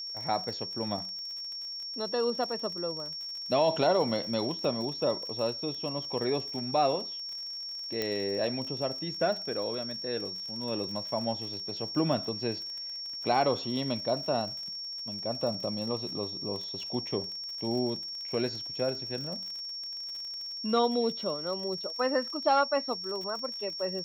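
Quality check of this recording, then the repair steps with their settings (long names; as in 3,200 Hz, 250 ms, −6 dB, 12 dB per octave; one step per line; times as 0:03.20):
surface crackle 52 per second −38 dBFS
whistle 5,500 Hz −36 dBFS
0:08.02: click −16 dBFS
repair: click removal
notch filter 5,500 Hz, Q 30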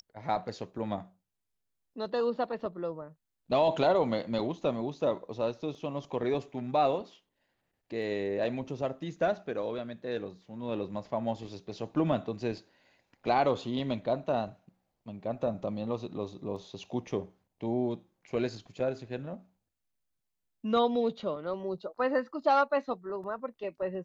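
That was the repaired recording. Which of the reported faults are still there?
0:08.02: click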